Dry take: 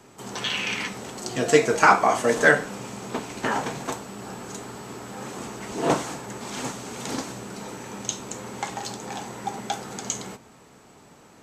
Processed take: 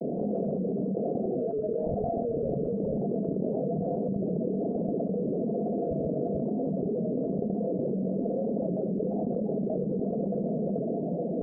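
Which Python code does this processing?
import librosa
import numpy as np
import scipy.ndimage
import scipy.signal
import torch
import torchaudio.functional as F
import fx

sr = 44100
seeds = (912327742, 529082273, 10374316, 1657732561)

p1 = fx.dereverb_blind(x, sr, rt60_s=1.5)
p2 = scipy.signal.sosfilt(scipy.signal.butter(12, 150.0, 'highpass', fs=sr, output='sos'), p1)
p3 = fx.level_steps(p2, sr, step_db=22)
p4 = fx.transient(p3, sr, attack_db=-12, sustain_db=7)
p5 = (np.mod(10.0 ** (20.5 / 20.0) * p4 + 1.0, 2.0) - 1.0) / 10.0 ** (20.5 / 20.0)
p6 = scipy.signal.sosfilt(scipy.signal.cheby1(6, 6, 680.0, 'lowpass', fs=sr, output='sos'), p5)
p7 = fx.vibrato(p6, sr, rate_hz=1.1, depth_cents=81.0)
p8 = p7 + fx.echo_multitap(p7, sr, ms=(84, 137, 435), db=(-18.5, -14.0, -14.0), dry=0)
p9 = fx.env_flatten(p8, sr, amount_pct=100)
y = p9 * librosa.db_to_amplitude(1.0)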